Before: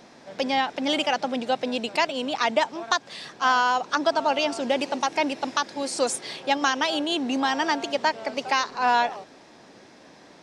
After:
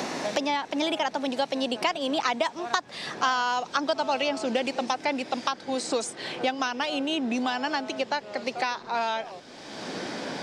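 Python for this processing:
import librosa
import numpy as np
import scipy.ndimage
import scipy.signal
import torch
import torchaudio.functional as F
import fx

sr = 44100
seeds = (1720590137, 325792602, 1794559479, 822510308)

y = fx.doppler_pass(x, sr, speed_mps=25, closest_m=28.0, pass_at_s=3.31)
y = fx.band_squash(y, sr, depth_pct=100)
y = F.gain(torch.from_numpy(y), 2.0).numpy()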